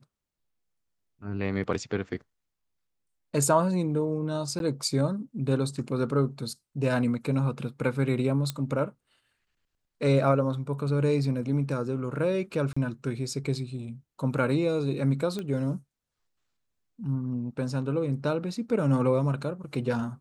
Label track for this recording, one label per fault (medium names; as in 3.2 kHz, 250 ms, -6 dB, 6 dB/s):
4.590000	4.600000	dropout
8.500000	8.500000	pop -15 dBFS
12.730000	12.770000	dropout 35 ms
15.390000	15.390000	pop -21 dBFS